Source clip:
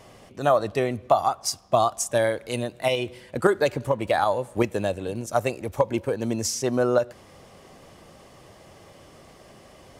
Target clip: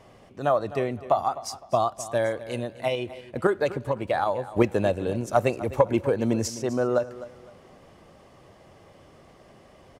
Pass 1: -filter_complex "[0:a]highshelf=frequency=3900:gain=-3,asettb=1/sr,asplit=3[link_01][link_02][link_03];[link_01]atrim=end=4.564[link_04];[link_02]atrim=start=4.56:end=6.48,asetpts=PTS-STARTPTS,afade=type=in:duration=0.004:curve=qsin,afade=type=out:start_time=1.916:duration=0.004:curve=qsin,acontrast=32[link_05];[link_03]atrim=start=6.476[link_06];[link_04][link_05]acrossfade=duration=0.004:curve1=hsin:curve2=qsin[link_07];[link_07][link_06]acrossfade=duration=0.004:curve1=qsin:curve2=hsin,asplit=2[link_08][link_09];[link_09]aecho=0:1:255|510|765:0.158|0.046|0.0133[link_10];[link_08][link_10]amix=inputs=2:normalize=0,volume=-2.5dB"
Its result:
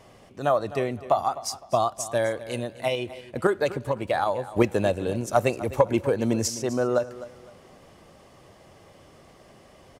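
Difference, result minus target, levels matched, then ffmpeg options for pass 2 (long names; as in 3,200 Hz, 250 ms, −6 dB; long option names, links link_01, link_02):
8,000 Hz band +4.5 dB
-filter_complex "[0:a]highshelf=frequency=3900:gain=-9,asettb=1/sr,asplit=3[link_01][link_02][link_03];[link_01]atrim=end=4.564[link_04];[link_02]atrim=start=4.56:end=6.48,asetpts=PTS-STARTPTS,afade=type=in:duration=0.004:curve=qsin,afade=type=out:start_time=1.916:duration=0.004:curve=qsin,acontrast=32[link_05];[link_03]atrim=start=6.476[link_06];[link_04][link_05]acrossfade=duration=0.004:curve1=hsin:curve2=qsin[link_07];[link_07][link_06]acrossfade=duration=0.004:curve1=qsin:curve2=hsin,asplit=2[link_08][link_09];[link_09]aecho=0:1:255|510|765:0.158|0.046|0.0133[link_10];[link_08][link_10]amix=inputs=2:normalize=0,volume=-2.5dB"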